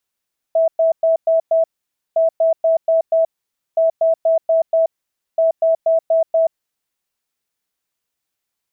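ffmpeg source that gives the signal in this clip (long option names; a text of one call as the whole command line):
ffmpeg -f lavfi -i "aevalsrc='0.282*sin(2*PI*653*t)*clip(min(mod(mod(t,1.61),0.24),0.13-mod(mod(t,1.61),0.24))/0.005,0,1)*lt(mod(t,1.61),1.2)':duration=6.44:sample_rate=44100" out.wav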